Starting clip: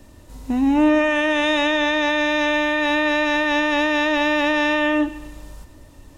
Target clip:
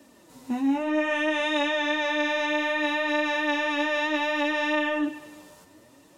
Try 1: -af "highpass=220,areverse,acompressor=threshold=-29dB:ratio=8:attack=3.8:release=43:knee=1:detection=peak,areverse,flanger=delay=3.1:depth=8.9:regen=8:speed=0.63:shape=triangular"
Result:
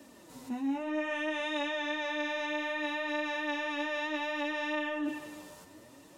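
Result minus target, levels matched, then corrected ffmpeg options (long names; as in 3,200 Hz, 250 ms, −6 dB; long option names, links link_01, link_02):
downward compressor: peak gain reduction +8.5 dB
-af "highpass=220,areverse,acompressor=threshold=-19.5dB:ratio=8:attack=3.8:release=43:knee=1:detection=peak,areverse,flanger=delay=3.1:depth=8.9:regen=8:speed=0.63:shape=triangular"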